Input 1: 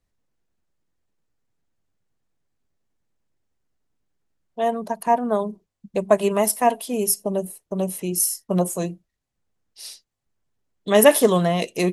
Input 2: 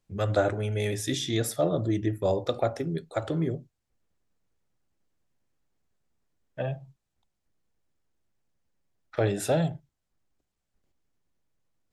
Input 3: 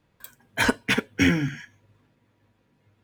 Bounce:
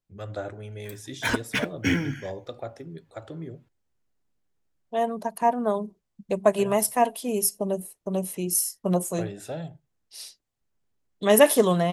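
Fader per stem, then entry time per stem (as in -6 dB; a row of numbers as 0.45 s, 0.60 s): -3.0 dB, -9.5 dB, -4.0 dB; 0.35 s, 0.00 s, 0.65 s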